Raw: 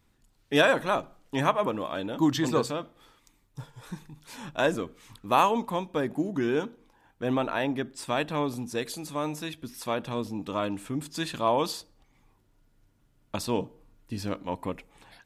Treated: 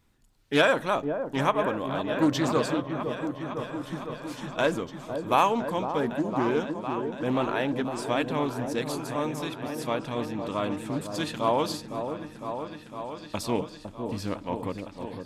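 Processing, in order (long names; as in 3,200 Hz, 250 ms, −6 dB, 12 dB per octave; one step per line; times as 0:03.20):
echo whose low-pass opens from repeat to repeat 507 ms, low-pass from 750 Hz, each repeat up 1 octave, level −6 dB
highs frequency-modulated by the lows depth 0.17 ms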